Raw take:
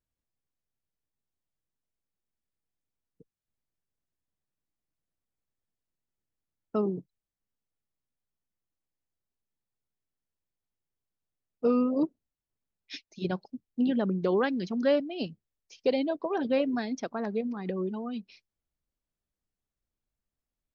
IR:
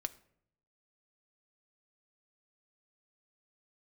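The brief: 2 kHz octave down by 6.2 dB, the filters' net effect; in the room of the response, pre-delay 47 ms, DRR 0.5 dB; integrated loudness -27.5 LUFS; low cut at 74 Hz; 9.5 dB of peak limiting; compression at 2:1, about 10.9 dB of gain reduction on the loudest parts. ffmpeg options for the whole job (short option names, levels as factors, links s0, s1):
-filter_complex "[0:a]highpass=74,equalizer=f=2000:t=o:g=-8.5,acompressor=threshold=0.00794:ratio=2,alimiter=level_in=3.55:limit=0.0631:level=0:latency=1,volume=0.282,asplit=2[s0][s1];[1:a]atrim=start_sample=2205,adelay=47[s2];[s1][s2]afir=irnorm=-1:irlink=0,volume=1.06[s3];[s0][s3]amix=inputs=2:normalize=0,volume=4.73"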